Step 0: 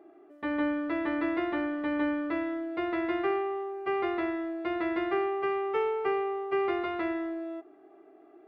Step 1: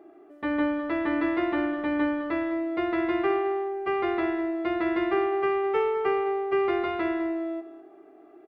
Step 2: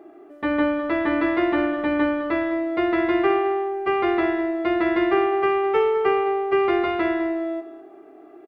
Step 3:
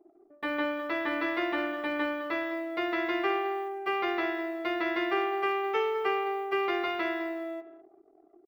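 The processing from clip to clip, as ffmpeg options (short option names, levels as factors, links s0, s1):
-af "lowshelf=f=160:g=3.5,aecho=1:1:206|412:0.224|0.0403,volume=1.41"
-filter_complex "[0:a]asplit=2[s0][s1];[s1]adelay=29,volume=0.211[s2];[s0][s2]amix=inputs=2:normalize=0,volume=1.88"
-af "aemphasis=mode=production:type=riaa,anlmdn=0.0631,volume=0.473"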